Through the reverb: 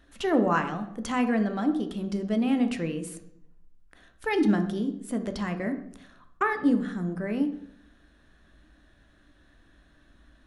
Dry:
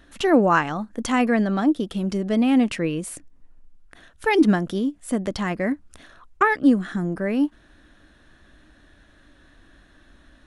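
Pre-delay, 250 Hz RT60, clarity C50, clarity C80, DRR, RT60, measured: 3 ms, 0.85 s, 10.5 dB, 13.5 dB, 7.0 dB, 0.70 s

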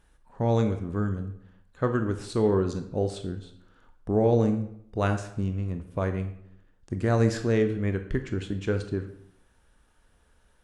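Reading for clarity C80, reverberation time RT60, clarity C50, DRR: 13.0 dB, 0.70 s, 10.0 dB, 7.0 dB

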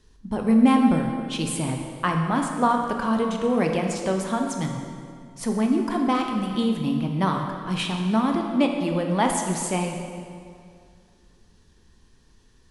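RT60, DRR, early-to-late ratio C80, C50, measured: 2.2 s, 2.5 dB, 5.0 dB, 3.5 dB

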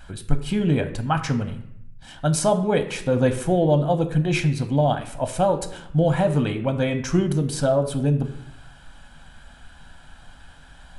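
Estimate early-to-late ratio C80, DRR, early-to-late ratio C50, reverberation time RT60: 14.0 dB, 7.0 dB, 12.0 dB, 0.75 s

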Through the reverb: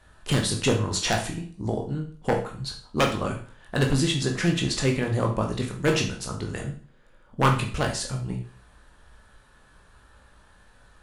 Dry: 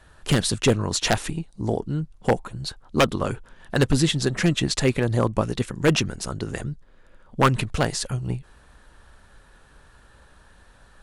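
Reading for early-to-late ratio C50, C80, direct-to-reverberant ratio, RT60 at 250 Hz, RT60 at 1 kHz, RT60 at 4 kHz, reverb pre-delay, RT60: 8.5 dB, 12.5 dB, 1.0 dB, 0.45 s, 0.45 s, 0.40 s, 16 ms, 0.45 s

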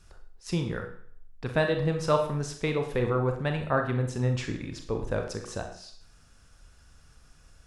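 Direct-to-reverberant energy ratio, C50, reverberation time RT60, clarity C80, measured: 4.0 dB, 8.0 dB, 0.55 s, 11.0 dB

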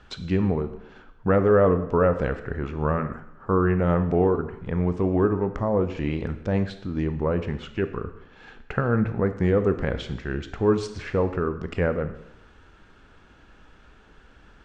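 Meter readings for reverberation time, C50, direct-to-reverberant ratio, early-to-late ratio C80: 0.80 s, 11.5 dB, 9.5 dB, 13.5 dB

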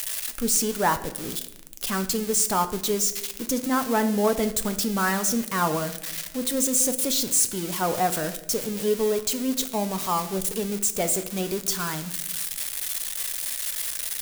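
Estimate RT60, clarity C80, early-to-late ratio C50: 1.0 s, 15.0 dB, 13.0 dB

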